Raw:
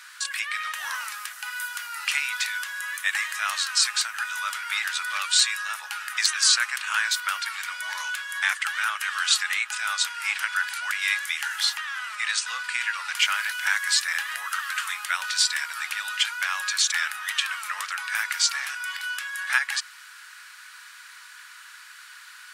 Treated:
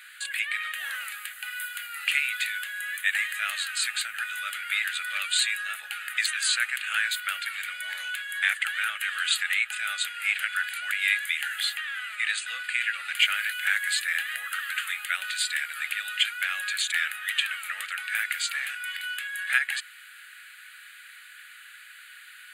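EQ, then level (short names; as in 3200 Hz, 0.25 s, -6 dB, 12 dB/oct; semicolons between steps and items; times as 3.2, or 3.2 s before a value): fixed phaser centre 2400 Hz, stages 4; +1.5 dB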